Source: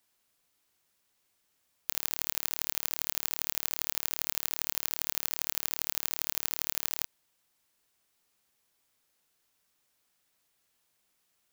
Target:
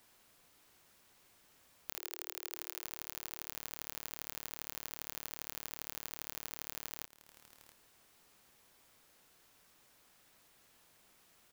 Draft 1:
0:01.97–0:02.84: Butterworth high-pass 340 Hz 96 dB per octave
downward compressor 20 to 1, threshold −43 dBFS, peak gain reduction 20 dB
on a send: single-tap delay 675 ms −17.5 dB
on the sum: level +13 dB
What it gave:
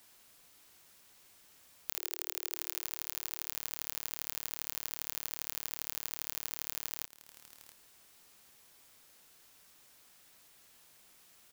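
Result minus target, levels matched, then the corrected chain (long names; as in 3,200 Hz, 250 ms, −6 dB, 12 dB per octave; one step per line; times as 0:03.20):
2,000 Hz band −3.0 dB
0:01.97–0:02.84: Butterworth high-pass 340 Hz 96 dB per octave
downward compressor 20 to 1, threshold −43 dBFS, peak gain reduction 20 dB
high-shelf EQ 2,500 Hz −6.5 dB
on a send: single-tap delay 675 ms −17.5 dB
on the sum: level +13 dB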